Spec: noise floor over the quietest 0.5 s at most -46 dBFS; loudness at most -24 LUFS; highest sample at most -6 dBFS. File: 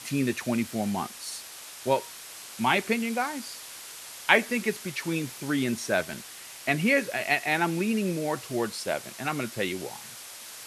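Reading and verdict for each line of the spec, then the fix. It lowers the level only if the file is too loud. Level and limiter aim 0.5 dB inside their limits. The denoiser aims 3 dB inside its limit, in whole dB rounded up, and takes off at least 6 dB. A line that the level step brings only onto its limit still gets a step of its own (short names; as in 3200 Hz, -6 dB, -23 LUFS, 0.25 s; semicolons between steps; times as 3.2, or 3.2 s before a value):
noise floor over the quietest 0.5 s -44 dBFS: fail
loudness -28.0 LUFS: OK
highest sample -3.0 dBFS: fail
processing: denoiser 6 dB, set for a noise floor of -44 dBFS; limiter -6.5 dBFS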